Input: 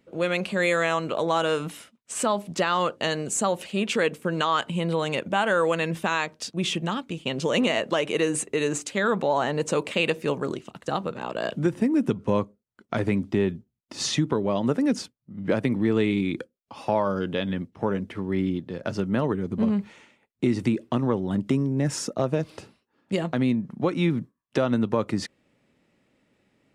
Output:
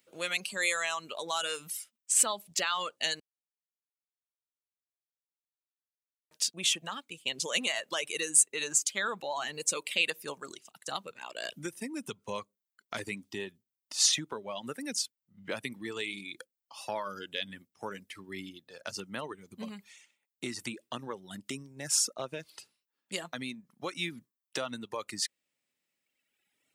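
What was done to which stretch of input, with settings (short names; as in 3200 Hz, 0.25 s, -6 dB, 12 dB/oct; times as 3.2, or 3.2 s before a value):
3.2–6.31 mute
whole clip: pre-emphasis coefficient 0.9; reverb removal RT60 1.8 s; low shelf 320 Hz -8 dB; gain +7.5 dB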